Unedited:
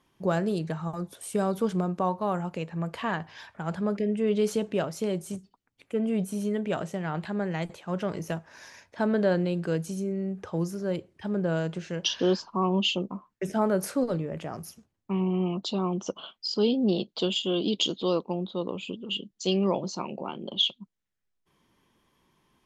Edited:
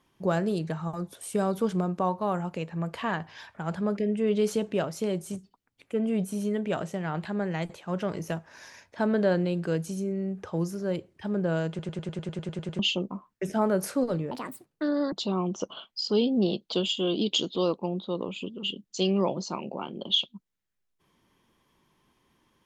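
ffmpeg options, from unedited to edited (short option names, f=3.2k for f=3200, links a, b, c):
-filter_complex "[0:a]asplit=14[a][b][c][d][e][f][g][h][i][j][k][l][m][n];[a]atrim=end=11.792[o];[b]atrim=start=11.688:end=11.792[p];[c]atrim=start=11.688:end=11.792[q];[d]atrim=start=11.688:end=11.792[r];[e]atrim=start=11.688:end=11.792[s];[f]atrim=start=11.688:end=11.792[t];[g]atrim=start=11.688:end=11.792[u];[h]atrim=start=11.688:end=11.792[v];[i]atrim=start=11.688:end=11.792[w];[j]atrim=start=11.688:end=11.792[x];[k]atrim=start=11.688:end=11.792[y];[l]atrim=start=12.788:end=14.314[z];[m]atrim=start=14.31:end=15.59,asetpts=PTS-STARTPTS,asetrate=69237,aresample=44100,atrim=end_sample=35954,asetpts=PTS-STARTPTS[aa];[n]atrim=start=15.586[ab];[o][p]acrossfade=d=0.004:c1=hsin:c2=hsin[ac];[ac][q]acrossfade=d=0.004:c1=hsin:c2=hsin[ad];[ad][r]acrossfade=d=0.004:c1=hsin:c2=hsin[ae];[ae][s]acrossfade=d=0.004:c1=hsin:c2=hsin[af];[af][t]acrossfade=d=0.004:c1=hsin:c2=hsin[ag];[ag][u]acrossfade=d=0.004:c1=hsin:c2=hsin[ah];[ah][v]acrossfade=d=0.004:c1=hsin:c2=hsin[ai];[ai][w]acrossfade=d=0.004:c1=hsin:c2=hsin[aj];[aj][x]acrossfade=d=0.004:c1=hsin:c2=hsin[ak];[ak][y]acrossfade=d=0.004:c1=hsin:c2=hsin[al];[al][z]acrossfade=d=0.004:c1=hsin:c2=hsin[am];[am][aa]acrossfade=d=0.004:c1=hsin:c2=hsin[an];[an][ab]acrossfade=d=0.004:c1=hsin:c2=hsin"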